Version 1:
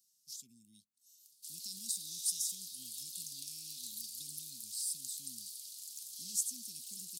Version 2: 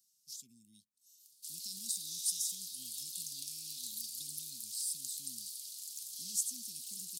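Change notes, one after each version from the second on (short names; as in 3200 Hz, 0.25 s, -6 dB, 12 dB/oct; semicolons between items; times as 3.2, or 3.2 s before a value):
background: send +8.5 dB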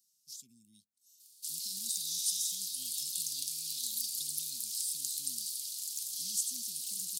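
background +6.5 dB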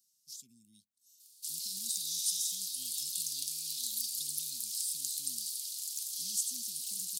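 background: add HPF 770 Hz 24 dB/oct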